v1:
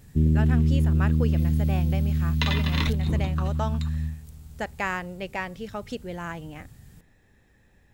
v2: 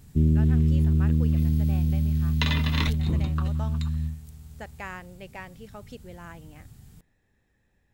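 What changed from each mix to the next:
speech -9.5 dB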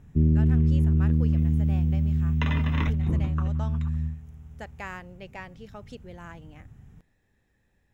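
background: add running mean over 10 samples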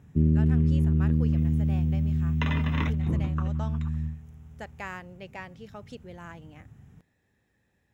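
master: add HPF 77 Hz

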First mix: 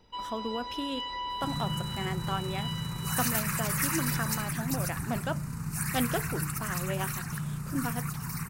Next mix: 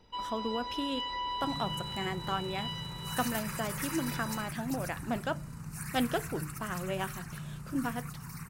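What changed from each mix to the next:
second sound -7.5 dB; master: add high shelf 12000 Hz -4.5 dB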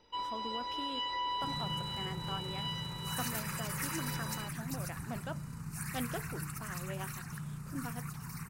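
speech -9.0 dB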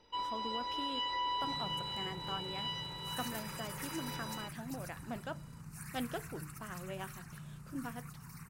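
second sound -7.0 dB

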